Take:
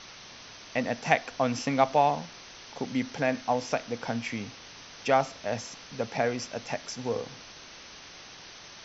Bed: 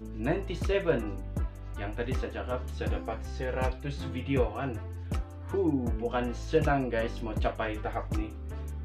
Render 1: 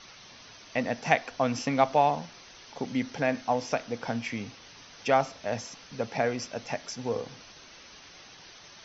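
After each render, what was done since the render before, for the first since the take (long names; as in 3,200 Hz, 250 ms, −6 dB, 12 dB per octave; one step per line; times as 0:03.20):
broadband denoise 6 dB, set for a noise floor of −48 dBFS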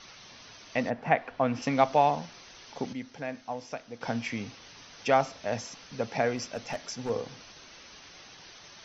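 0:00.89–0:01.61: low-pass filter 1,500 Hz → 2,900 Hz
0:02.93–0:04.01: clip gain −9 dB
0:06.36–0:07.10: hard clipping −27 dBFS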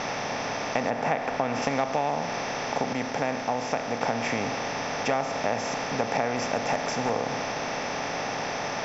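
compressor on every frequency bin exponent 0.4
downward compressor 6 to 1, threshold −22 dBFS, peak gain reduction 8.5 dB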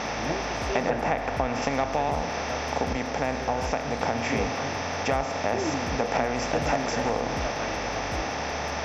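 mix in bed −3.5 dB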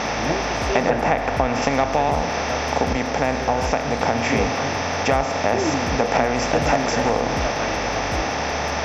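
level +6.5 dB
brickwall limiter −3 dBFS, peak gain reduction 1 dB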